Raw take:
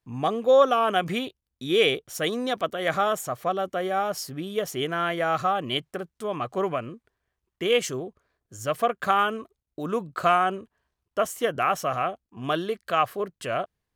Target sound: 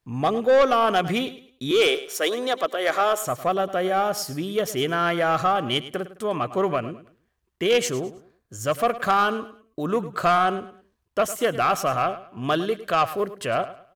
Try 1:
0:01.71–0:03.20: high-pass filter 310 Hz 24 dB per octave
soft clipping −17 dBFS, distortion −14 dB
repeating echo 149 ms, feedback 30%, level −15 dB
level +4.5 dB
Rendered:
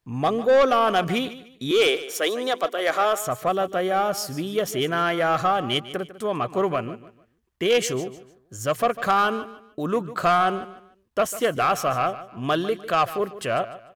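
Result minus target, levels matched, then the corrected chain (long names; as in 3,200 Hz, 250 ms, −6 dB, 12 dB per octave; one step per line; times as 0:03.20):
echo 44 ms late
0:01.71–0:03.20: high-pass filter 310 Hz 24 dB per octave
soft clipping −17 dBFS, distortion −14 dB
repeating echo 105 ms, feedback 30%, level −15 dB
level +4.5 dB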